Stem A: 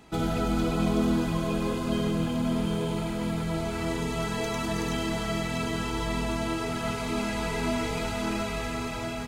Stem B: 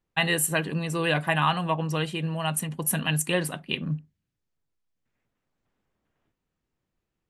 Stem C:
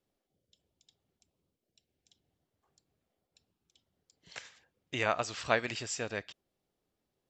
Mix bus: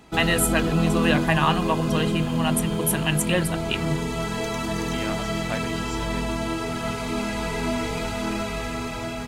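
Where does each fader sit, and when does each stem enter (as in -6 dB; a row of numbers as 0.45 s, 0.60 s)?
+2.5 dB, +2.0 dB, -4.5 dB; 0.00 s, 0.00 s, 0.00 s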